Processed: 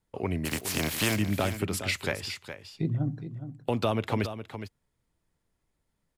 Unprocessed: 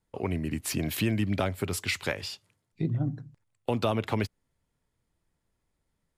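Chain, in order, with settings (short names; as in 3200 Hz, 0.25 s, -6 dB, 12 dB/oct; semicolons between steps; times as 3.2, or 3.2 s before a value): 0.44–1.15 spectral contrast lowered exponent 0.44; on a send: echo 0.415 s -10.5 dB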